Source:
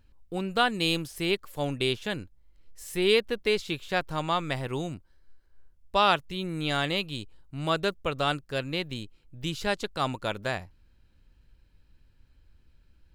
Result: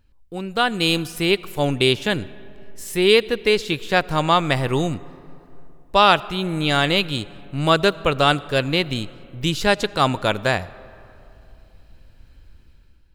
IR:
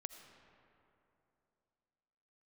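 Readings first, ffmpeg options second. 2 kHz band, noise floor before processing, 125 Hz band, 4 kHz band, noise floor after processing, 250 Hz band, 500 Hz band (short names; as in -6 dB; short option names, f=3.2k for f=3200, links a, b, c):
+9.0 dB, -62 dBFS, +10.0 dB, +9.0 dB, -51 dBFS, +9.0 dB, +9.0 dB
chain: -filter_complex "[0:a]dynaudnorm=f=270:g=5:m=11.5dB,asplit=2[a][b];[1:a]atrim=start_sample=2205[c];[b][c]afir=irnorm=-1:irlink=0,volume=-5dB[d];[a][d]amix=inputs=2:normalize=0,volume=-2dB"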